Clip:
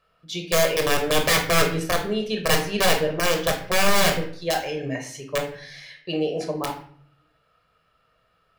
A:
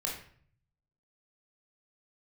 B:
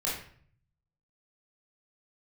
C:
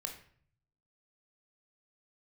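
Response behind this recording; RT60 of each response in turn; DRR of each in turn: C; 0.55, 0.55, 0.55 s; -2.5, -7.0, 3.0 dB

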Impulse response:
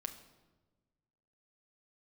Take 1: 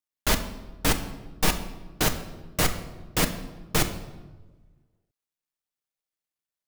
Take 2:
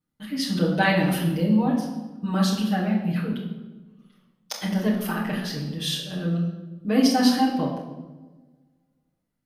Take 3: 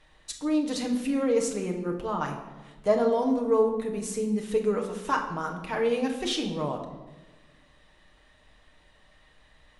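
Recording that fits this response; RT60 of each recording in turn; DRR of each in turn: 1; 1.3, 1.2, 1.2 s; 5.5, -6.0, 1.0 dB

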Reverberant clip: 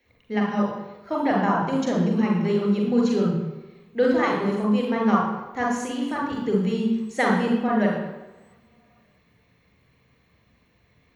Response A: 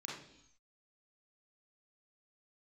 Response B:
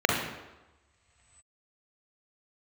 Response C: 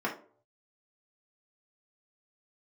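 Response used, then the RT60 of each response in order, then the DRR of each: B; 0.75 s, not exponential, 0.50 s; -4.5, -1.5, -4.5 dB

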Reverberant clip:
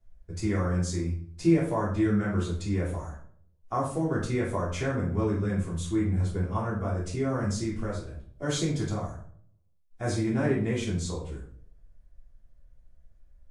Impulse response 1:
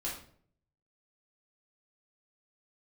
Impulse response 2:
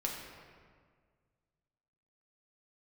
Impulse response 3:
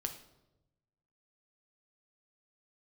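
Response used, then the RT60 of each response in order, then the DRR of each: 1; 0.55, 1.8, 0.95 s; -6.5, -2.0, 5.0 dB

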